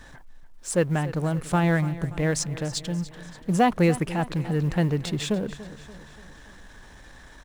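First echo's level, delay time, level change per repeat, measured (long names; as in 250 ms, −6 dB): −16.0 dB, 289 ms, −5.5 dB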